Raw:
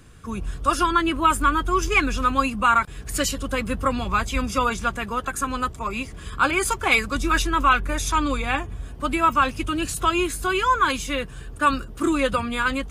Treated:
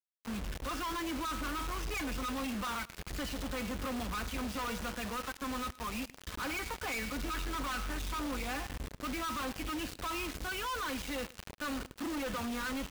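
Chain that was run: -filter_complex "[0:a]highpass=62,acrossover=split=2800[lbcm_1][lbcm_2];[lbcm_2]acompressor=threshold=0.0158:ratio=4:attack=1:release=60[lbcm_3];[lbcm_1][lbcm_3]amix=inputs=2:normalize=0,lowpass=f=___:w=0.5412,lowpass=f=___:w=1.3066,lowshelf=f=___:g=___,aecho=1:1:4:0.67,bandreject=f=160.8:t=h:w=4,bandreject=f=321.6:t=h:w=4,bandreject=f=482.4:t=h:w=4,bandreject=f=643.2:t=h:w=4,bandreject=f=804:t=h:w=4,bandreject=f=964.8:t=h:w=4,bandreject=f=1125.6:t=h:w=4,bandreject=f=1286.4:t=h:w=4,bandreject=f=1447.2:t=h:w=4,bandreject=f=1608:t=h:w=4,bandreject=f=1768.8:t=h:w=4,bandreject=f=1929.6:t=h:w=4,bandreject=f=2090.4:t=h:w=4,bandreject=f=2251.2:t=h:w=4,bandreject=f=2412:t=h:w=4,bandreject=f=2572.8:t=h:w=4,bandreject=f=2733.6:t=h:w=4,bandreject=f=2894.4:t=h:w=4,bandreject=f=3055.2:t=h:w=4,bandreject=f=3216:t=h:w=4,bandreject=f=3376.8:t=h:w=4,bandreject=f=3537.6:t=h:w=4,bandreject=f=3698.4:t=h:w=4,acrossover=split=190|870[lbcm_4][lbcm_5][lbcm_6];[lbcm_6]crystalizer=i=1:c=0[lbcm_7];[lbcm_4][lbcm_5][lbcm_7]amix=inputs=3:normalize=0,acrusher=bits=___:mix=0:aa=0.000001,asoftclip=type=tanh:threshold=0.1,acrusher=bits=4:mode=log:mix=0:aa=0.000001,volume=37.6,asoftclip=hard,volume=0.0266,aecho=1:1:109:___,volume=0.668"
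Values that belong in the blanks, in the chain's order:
4900, 4900, 120, 5.5, 4, 0.0841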